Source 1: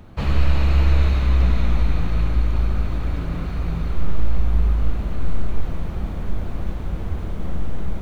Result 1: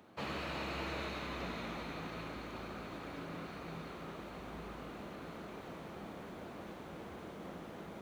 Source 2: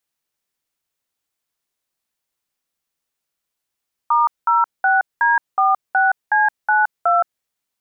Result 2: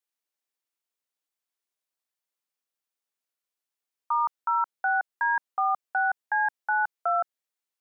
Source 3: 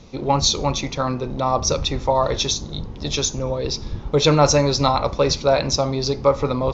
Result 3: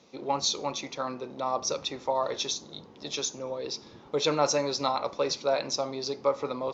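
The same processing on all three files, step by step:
high-pass 280 Hz 12 dB/octave; trim -9 dB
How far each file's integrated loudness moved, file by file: -20.5 LU, -9.0 LU, -10.0 LU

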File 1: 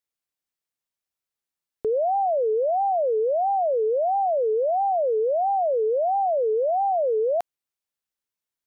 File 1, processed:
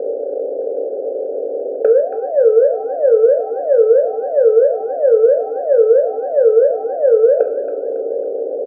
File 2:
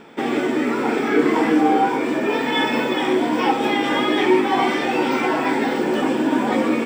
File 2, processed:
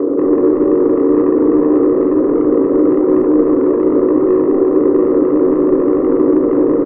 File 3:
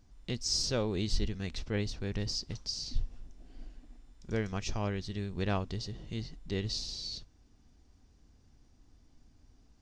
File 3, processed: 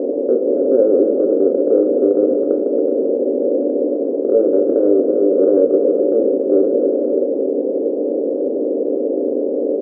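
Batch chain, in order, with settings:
spectral levelling over time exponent 0.2; elliptic band-pass 270–550 Hz, stop band 60 dB; in parallel at 0 dB: compression 4:1, threshold -23 dBFS; on the sum: saturation -9 dBFS; distance through air 460 m; feedback delay 276 ms, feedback 41%, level -12 dB; simulated room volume 42 m³, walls mixed, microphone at 0.34 m; tape noise reduction on one side only encoder only; peak normalisation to -1.5 dBFS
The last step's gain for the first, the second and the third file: +6.0 dB, +0.5 dB, +11.0 dB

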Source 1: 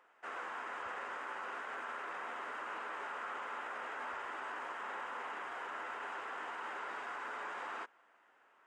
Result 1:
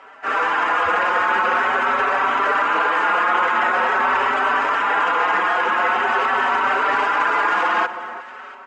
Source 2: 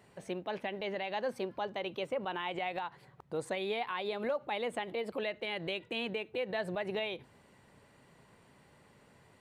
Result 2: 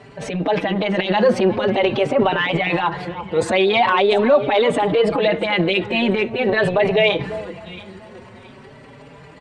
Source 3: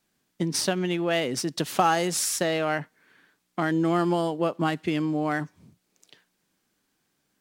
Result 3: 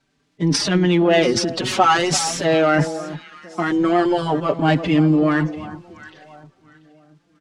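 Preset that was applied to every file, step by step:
coarse spectral quantiser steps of 15 dB; distance through air 100 m; transient shaper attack -5 dB, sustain +9 dB; on a send: echo whose repeats swap between lows and highs 343 ms, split 1.2 kHz, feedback 52%, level -12 dB; on the sum: endless flanger 4.7 ms +0.45 Hz; normalise loudness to -18 LUFS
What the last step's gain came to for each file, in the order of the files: +28.0 dB, +22.5 dB, +12.0 dB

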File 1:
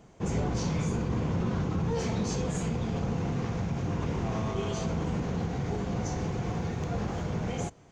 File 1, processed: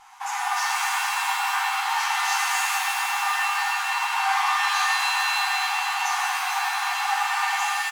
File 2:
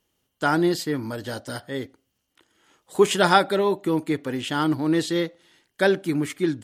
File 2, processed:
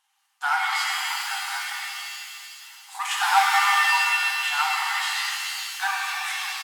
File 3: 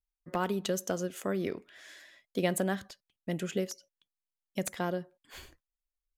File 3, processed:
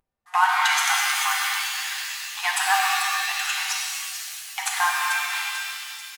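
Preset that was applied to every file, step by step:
CVSD coder 64 kbps; treble shelf 7.3 kHz +10 dB; comb 7.5 ms, depth 40%; feedback echo behind a high-pass 441 ms, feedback 52%, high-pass 2.8 kHz, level -8 dB; saturation -19 dBFS; brick-wall FIR high-pass 730 Hz; tilt EQ -4 dB/octave; pitch-shifted reverb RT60 2 s, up +7 st, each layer -2 dB, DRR -1.5 dB; normalise loudness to -23 LUFS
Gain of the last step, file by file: +13.0 dB, +4.5 dB, +16.5 dB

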